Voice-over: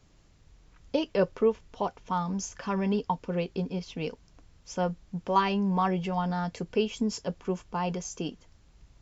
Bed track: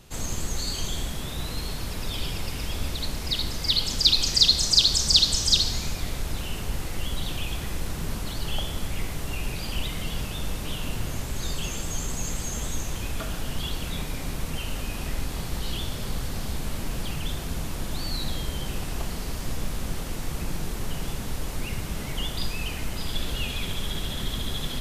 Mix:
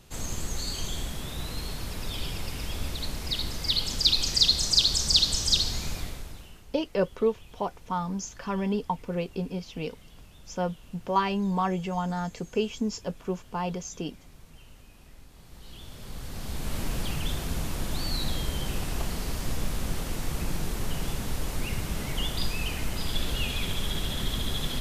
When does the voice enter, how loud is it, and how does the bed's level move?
5.80 s, -0.5 dB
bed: 5.98 s -3 dB
6.66 s -21.5 dB
15.32 s -21.5 dB
16.78 s 0 dB

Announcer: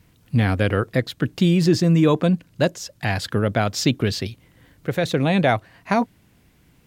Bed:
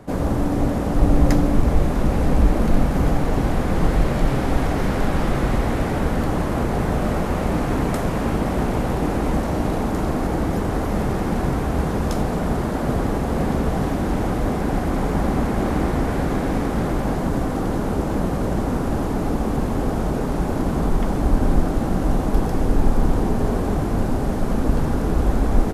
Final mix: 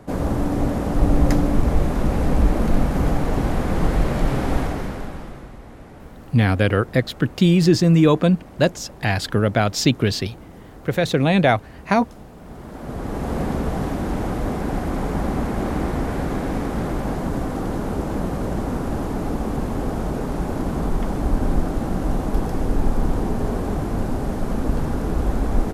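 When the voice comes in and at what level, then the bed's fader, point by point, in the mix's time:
6.00 s, +2.0 dB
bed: 4.57 s -1 dB
5.54 s -20 dB
12.35 s -20 dB
13.27 s -2.5 dB

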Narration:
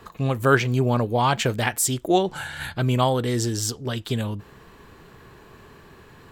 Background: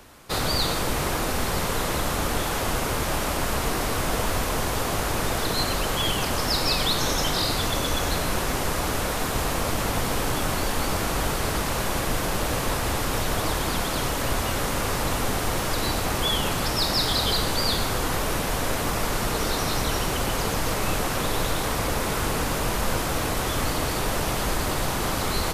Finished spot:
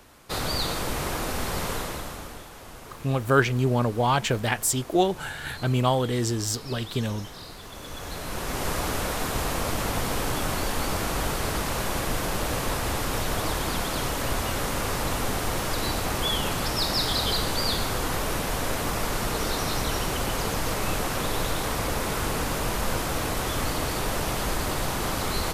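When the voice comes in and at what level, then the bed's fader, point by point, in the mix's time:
2.85 s, -2.0 dB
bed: 1.72 s -3.5 dB
2.50 s -18 dB
7.61 s -18 dB
8.68 s -2 dB

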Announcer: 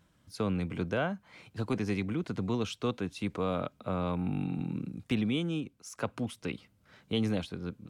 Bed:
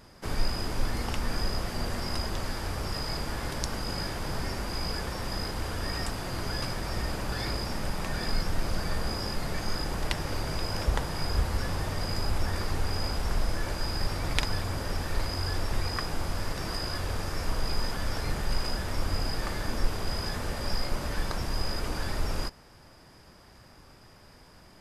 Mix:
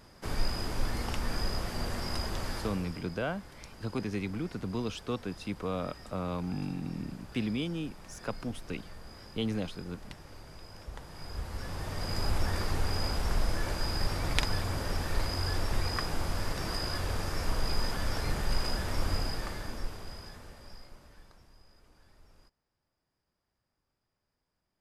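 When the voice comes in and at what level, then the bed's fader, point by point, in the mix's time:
2.25 s, -2.5 dB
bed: 2.58 s -2.5 dB
3.07 s -17.5 dB
10.84 s -17.5 dB
12.26 s -1 dB
19.12 s -1 dB
21.65 s -30 dB

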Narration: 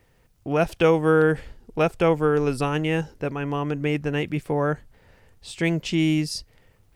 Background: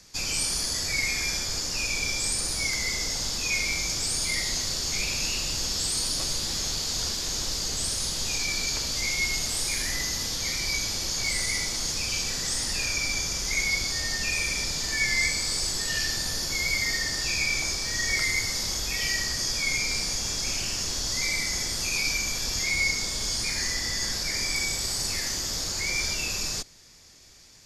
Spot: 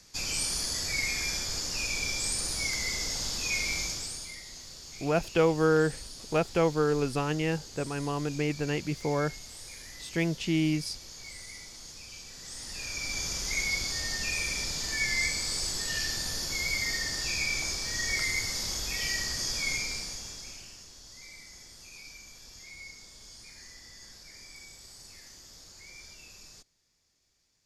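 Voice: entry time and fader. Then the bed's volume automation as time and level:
4.55 s, -5.5 dB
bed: 3.82 s -3.5 dB
4.40 s -17 dB
12.30 s -17 dB
13.26 s -4 dB
19.71 s -4 dB
20.90 s -21 dB

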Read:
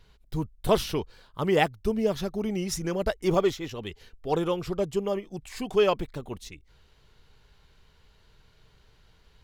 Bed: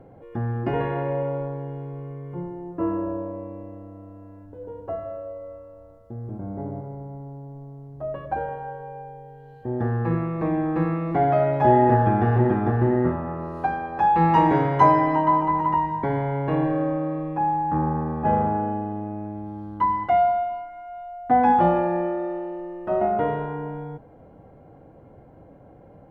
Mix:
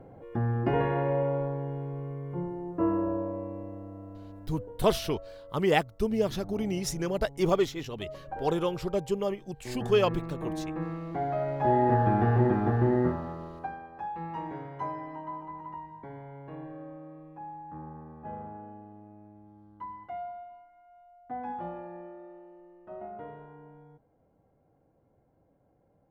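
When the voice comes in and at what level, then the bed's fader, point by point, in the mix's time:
4.15 s, -1.5 dB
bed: 4.48 s -1.5 dB
4.84 s -11 dB
11.32 s -11 dB
12.16 s -4 dB
13.03 s -4 dB
14.21 s -19.5 dB

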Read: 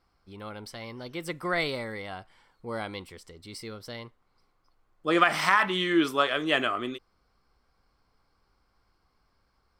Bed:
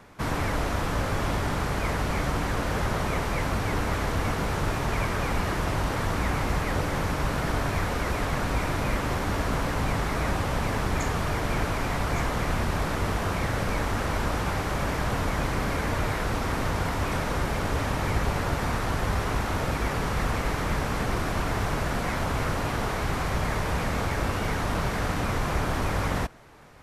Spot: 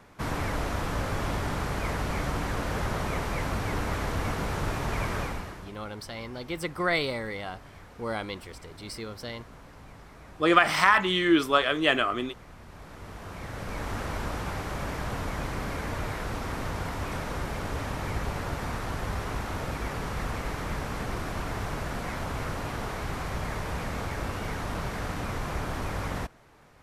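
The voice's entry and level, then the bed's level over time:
5.35 s, +2.0 dB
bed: 5.20 s -3 dB
5.78 s -22 dB
12.58 s -22 dB
13.92 s -5.5 dB

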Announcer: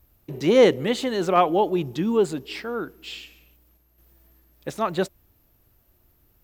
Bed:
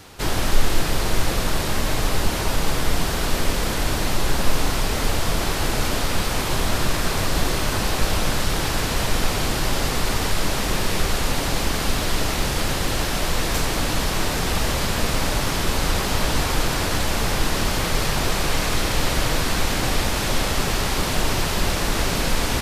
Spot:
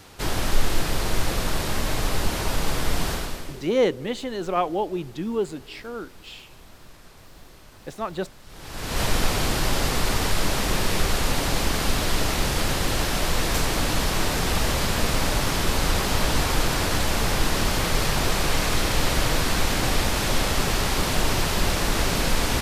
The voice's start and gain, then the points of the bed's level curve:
3.20 s, -5.0 dB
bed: 3.12 s -3 dB
3.78 s -26.5 dB
8.42 s -26.5 dB
9.01 s -1 dB

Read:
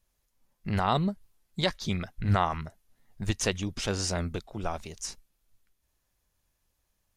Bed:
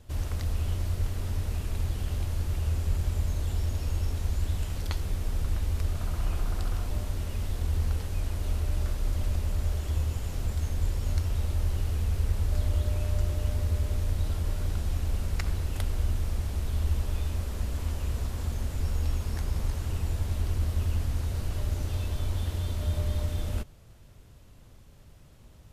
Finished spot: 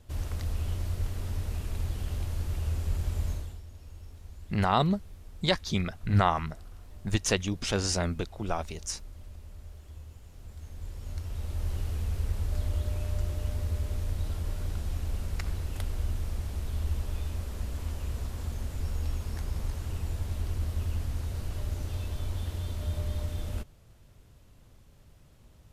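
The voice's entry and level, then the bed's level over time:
3.85 s, +1.5 dB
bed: 3.32 s -2.5 dB
3.63 s -17.5 dB
10.32 s -17.5 dB
11.72 s -3.5 dB

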